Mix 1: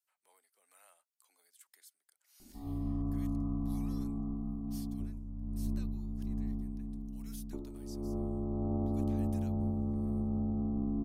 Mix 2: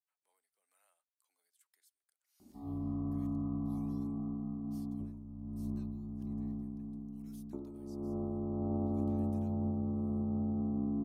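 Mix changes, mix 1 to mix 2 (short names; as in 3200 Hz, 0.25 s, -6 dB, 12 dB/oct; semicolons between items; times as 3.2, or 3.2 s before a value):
speech -11.5 dB; background: add HPF 90 Hz 12 dB/oct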